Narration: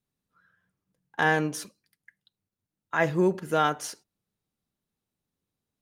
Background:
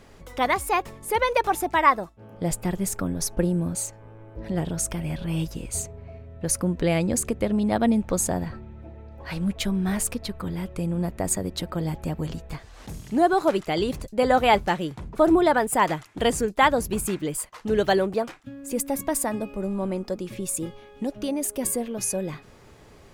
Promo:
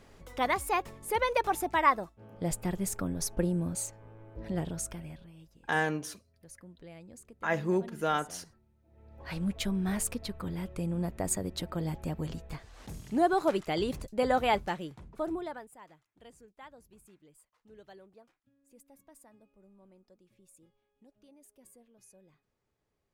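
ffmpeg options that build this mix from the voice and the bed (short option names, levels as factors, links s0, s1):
-filter_complex "[0:a]adelay=4500,volume=0.531[s0];[1:a]volume=5.62,afade=t=out:st=4.54:d=0.78:silence=0.0891251,afade=t=in:st=8.87:d=0.42:silence=0.0891251,afade=t=out:st=14.08:d=1.67:silence=0.0501187[s1];[s0][s1]amix=inputs=2:normalize=0"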